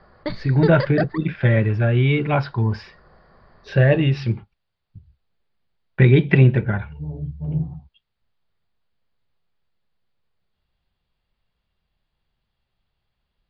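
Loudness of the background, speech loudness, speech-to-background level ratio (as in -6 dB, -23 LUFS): -28.5 LUFS, -19.0 LUFS, 9.5 dB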